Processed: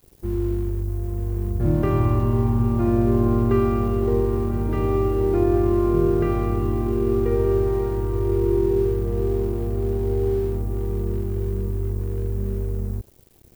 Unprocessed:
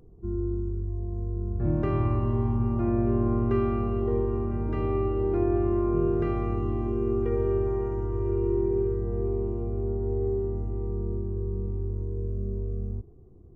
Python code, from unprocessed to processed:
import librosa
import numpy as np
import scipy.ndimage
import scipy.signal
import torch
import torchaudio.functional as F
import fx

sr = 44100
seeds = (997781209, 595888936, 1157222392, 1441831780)

y = fx.dmg_noise_colour(x, sr, seeds[0], colour='violet', level_db=-58.0)
y = np.sign(y) * np.maximum(np.abs(y) - 10.0 ** (-49.5 / 20.0), 0.0)
y = y * librosa.db_to_amplitude(6.0)